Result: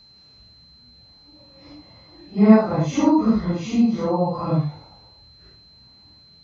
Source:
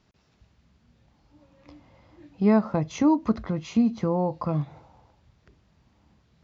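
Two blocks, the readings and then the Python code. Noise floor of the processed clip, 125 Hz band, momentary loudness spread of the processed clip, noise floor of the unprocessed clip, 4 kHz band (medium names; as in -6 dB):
-51 dBFS, +5.5 dB, 10 LU, -66 dBFS, +8.5 dB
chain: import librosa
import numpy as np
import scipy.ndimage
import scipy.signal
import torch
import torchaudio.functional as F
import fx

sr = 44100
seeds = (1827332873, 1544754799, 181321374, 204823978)

y = fx.phase_scramble(x, sr, seeds[0], window_ms=200)
y = y + 10.0 ** (-54.0 / 20.0) * np.sin(2.0 * np.pi * 4100.0 * np.arange(len(y)) / sr)
y = F.gain(torch.from_numpy(y), 5.0).numpy()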